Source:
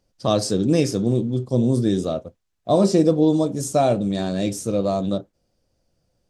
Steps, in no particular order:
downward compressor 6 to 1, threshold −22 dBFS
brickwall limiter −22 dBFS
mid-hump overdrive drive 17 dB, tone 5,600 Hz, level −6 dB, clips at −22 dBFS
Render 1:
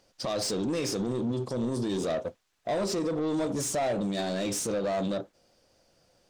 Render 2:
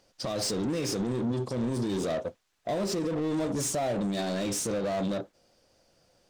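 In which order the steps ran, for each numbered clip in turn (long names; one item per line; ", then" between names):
downward compressor, then brickwall limiter, then mid-hump overdrive
mid-hump overdrive, then downward compressor, then brickwall limiter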